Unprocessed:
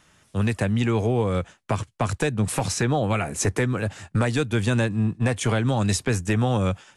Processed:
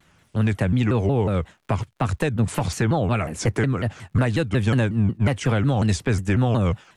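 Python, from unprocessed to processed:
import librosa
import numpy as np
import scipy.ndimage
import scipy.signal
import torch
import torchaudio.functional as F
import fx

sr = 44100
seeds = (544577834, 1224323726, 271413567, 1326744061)

y = fx.dmg_crackle(x, sr, seeds[0], per_s=120.0, level_db=-51.0)
y = fx.bass_treble(y, sr, bass_db=3, treble_db=-6)
y = fx.vibrato_shape(y, sr, shape='saw_down', rate_hz=5.5, depth_cents=250.0)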